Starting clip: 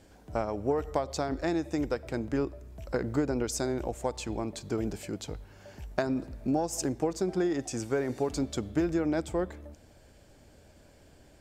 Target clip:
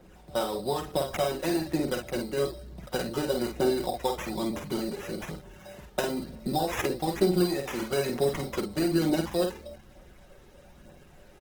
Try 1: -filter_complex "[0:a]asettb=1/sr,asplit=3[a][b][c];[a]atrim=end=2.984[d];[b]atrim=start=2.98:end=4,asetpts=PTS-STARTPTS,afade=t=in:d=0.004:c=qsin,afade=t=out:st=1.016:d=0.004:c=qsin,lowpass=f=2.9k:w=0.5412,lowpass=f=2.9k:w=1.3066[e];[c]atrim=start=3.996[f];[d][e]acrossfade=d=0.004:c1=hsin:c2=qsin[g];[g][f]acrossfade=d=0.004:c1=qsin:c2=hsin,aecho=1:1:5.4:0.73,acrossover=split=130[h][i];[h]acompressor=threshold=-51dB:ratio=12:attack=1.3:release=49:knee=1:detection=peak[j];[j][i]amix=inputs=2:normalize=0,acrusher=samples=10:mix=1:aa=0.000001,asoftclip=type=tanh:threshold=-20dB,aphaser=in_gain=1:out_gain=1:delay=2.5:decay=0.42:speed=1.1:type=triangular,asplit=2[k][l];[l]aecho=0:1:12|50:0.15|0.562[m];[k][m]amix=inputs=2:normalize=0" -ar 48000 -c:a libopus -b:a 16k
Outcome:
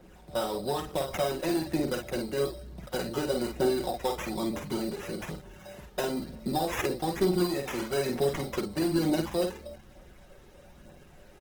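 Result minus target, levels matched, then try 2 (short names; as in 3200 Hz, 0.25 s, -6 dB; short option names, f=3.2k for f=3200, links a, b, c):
soft clip: distortion +14 dB
-filter_complex "[0:a]asettb=1/sr,asplit=3[a][b][c];[a]atrim=end=2.984[d];[b]atrim=start=2.98:end=4,asetpts=PTS-STARTPTS,afade=t=in:d=0.004:c=qsin,afade=t=out:st=1.016:d=0.004:c=qsin,lowpass=f=2.9k:w=0.5412,lowpass=f=2.9k:w=1.3066[e];[c]atrim=start=3.996[f];[d][e]acrossfade=d=0.004:c1=hsin:c2=qsin[g];[g][f]acrossfade=d=0.004:c1=qsin:c2=hsin,aecho=1:1:5.4:0.73,acrossover=split=130[h][i];[h]acompressor=threshold=-51dB:ratio=12:attack=1.3:release=49:knee=1:detection=peak[j];[j][i]amix=inputs=2:normalize=0,acrusher=samples=10:mix=1:aa=0.000001,asoftclip=type=tanh:threshold=-10.5dB,aphaser=in_gain=1:out_gain=1:delay=2.5:decay=0.42:speed=1.1:type=triangular,asplit=2[k][l];[l]aecho=0:1:12|50:0.15|0.562[m];[k][m]amix=inputs=2:normalize=0" -ar 48000 -c:a libopus -b:a 16k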